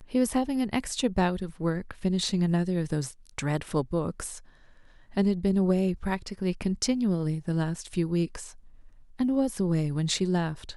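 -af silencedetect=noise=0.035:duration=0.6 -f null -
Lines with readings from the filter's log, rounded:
silence_start: 4.32
silence_end: 5.17 | silence_duration: 0.85
silence_start: 8.44
silence_end: 9.20 | silence_duration: 0.77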